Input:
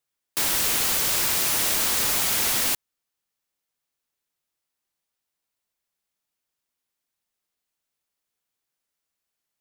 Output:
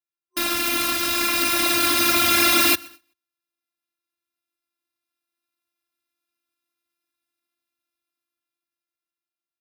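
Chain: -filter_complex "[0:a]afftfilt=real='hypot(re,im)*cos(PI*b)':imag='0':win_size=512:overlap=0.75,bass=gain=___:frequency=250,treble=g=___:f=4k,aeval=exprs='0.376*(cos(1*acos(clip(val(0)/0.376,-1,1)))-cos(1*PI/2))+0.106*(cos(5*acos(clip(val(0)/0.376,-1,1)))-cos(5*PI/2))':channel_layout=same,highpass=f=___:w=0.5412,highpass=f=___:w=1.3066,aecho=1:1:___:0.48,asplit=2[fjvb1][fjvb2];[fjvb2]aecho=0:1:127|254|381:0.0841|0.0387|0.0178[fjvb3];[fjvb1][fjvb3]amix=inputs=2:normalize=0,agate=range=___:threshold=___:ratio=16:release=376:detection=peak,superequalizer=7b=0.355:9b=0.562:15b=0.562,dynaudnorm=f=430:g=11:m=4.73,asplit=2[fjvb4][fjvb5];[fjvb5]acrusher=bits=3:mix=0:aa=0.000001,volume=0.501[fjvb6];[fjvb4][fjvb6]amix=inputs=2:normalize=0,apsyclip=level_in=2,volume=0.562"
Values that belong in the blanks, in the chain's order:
8, -5, 99, 99, 3.7, 0.158, 0.00794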